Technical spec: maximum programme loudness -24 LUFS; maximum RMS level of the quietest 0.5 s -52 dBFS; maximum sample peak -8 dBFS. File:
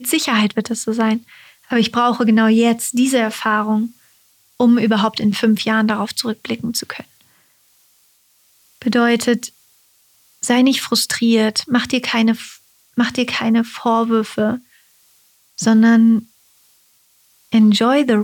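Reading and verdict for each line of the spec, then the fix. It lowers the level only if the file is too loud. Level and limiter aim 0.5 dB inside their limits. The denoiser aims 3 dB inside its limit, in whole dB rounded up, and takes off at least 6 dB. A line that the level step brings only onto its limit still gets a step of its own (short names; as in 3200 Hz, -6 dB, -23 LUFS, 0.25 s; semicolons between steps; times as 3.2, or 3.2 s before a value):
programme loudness -16.5 LUFS: fail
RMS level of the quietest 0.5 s -57 dBFS: OK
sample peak -5.5 dBFS: fail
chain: gain -8 dB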